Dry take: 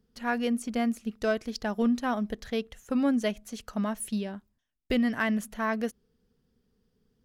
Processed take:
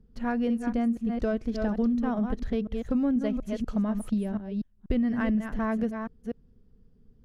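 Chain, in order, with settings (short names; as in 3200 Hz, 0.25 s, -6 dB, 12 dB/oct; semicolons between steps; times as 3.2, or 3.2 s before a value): reverse delay 0.243 s, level -8 dB; tilt -3.5 dB/oct; compressor 3:1, threshold -25 dBFS, peak gain reduction 8.5 dB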